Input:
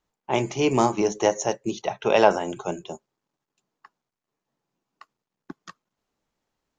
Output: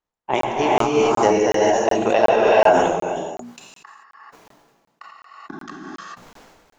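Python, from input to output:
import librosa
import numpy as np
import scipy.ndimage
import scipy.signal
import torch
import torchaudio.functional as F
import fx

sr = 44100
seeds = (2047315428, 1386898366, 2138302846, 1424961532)

y = fx.hum_notches(x, sr, base_hz=60, count=4)
y = fx.transient(y, sr, attack_db=11, sustain_db=-7)
y = fx.peak_eq(y, sr, hz=1100.0, db=5.0, octaves=2.9)
y = fx.rev_gated(y, sr, seeds[0], gate_ms=460, shape='rising', drr_db=-6.0)
y = fx.buffer_crackle(y, sr, first_s=0.41, period_s=0.37, block=1024, kind='zero')
y = fx.sustainer(y, sr, db_per_s=39.0)
y = y * librosa.db_to_amplitude(-10.5)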